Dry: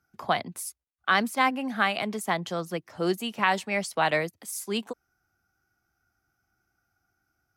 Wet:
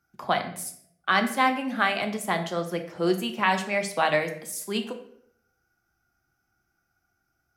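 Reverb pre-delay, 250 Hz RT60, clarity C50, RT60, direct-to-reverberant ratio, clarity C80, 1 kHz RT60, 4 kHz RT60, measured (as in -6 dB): 3 ms, 0.75 s, 9.5 dB, 0.70 s, 5.0 dB, 12.5 dB, 0.60 s, 0.50 s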